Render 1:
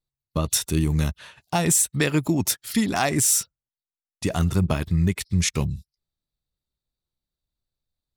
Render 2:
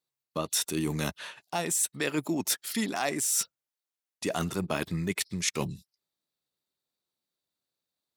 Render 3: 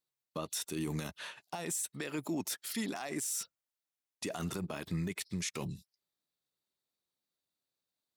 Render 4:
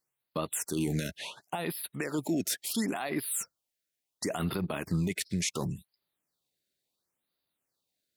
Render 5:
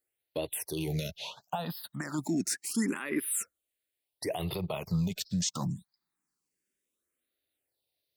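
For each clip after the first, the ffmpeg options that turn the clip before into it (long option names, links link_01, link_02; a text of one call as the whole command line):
ffmpeg -i in.wav -af "highpass=270,areverse,acompressor=threshold=-29dB:ratio=6,areverse,volume=3dB" out.wav
ffmpeg -i in.wav -af "alimiter=limit=-24dB:level=0:latency=1:release=50,volume=-3dB" out.wav
ffmpeg -i in.wav -af "afftfilt=real='re*(1-between(b*sr/1024,950*pow(7400/950,0.5+0.5*sin(2*PI*0.71*pts/sr))/1.41,950*pow(7400/950,0.5+0.5*sin(2*PI*0.71*pts/sr))*1.41))':imag='im*(1-between(b*sr/1024,950*pow(7400/950,0.5+0.5*sin(2*PI*0.71*pts/sr))/1.41,950*pow(7400/950,0.5+0.5*sin(2*PI*0.71*pts/sr))*1.41))':win_size=1024:overlap=0.75,volume=6dB" out.wav
ffmpeg -i in.wav -filter_complex "[0:a]asplit=2[link_01][link_02];[link_02]afreqshift=0.27[link_03];[link_01][link_03]amix=inputs=2:normalize=1,volume=2dB" out.wav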